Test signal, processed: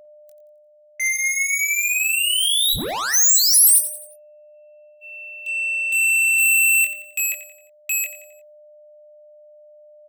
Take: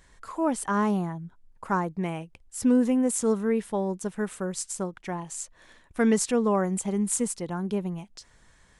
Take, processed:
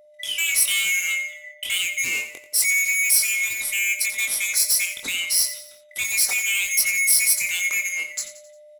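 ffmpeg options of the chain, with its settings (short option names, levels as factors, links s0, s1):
-filter_complex "[0:a]afftfilt=real='real(if(lt(b,920),b+92*(1-2*mod(floor(b/92),2)),b),0)':imag='imag(if(lt(b,920),b+92*(1-2*mod(floor(b/92),2)),b),0)':win_size=2048:overlap=0.75,agate=range=0.0178:threshold=0.00316:ratio=16:detection=peak,equalizer=f=110:t=o:w=0.33:g=-6.5,alimiter=limit=0.0841:level=0:latency=1:release=119,aeval=exprs='val(0)+0.00112*sin(2*PI*600*n/s)':c=same,areverse,acompressor=mode=upward:threshold=0.00282:ratio=2.5,areverse,asoftclip=type=tanh:threshold=0.0211,crystalizer=i=3.5:c=0,asplit=2[s0][s1];[s1]adelay=22,volume=0.562[s2];[s0][s2]amix=inputs=2:normalize=0,aecho=1:1:88|176|264|352:0.237|0.104|0.0459|0.0202,volume=2.11"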